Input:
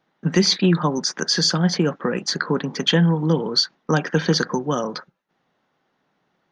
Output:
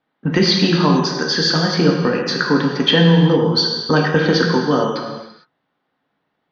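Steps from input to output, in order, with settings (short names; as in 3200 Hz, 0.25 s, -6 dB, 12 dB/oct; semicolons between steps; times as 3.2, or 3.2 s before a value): gate -30 dBFS, range -8 dB; LPF 4600 Hz 24 dB/oct; non-linear reverb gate 0.48 s falling, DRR 0 dB; gain +3 dB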